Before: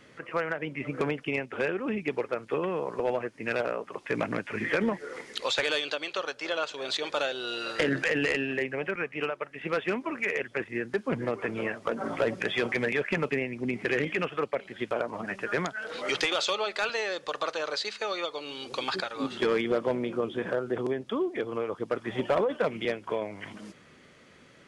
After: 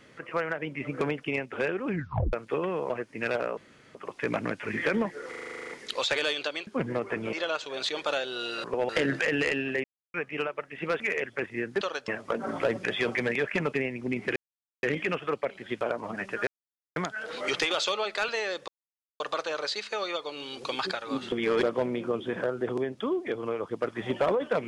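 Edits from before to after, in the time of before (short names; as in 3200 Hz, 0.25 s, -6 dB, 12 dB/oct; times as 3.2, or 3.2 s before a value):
1.88 tape stop 0.45 s
2.9–3.15 move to 7.72
3.82 insert room tone 0.38 s
5.16 stutter 0.04 s, 11 plays
6.14–6.41 swap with 10.99–11.65
8.67–8.97 mute
9.83–10.18 cut
13.93 insert silence 0.47 s
15.57 insert silence 0.49 s
17.29 insert silence 0.52 s
19.41–19.72 reverse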